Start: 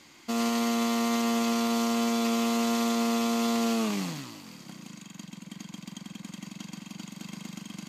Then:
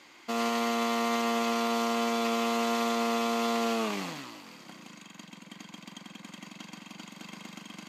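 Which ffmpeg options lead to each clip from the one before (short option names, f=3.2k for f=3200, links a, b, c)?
-af "bass=f=250:g=-14,treble=f=4k:g=-8,volume=2.5dB"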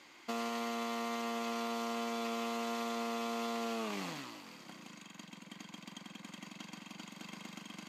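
-af "acompressor=threshold=-31dB:ratio=4,volume=-3.5dB"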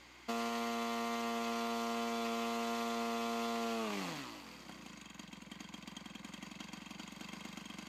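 -af "aeval=exprs='val(0)+0.000398*(sin(2*PI*60*n/s)+sin(2*PI*2*60*n/s)/2+sin(2*PI*3*60*n/s)/3+sin(2*PI*4*60*n/s)/4+sin(2*PI*5*60*n/s)/5)':c=same"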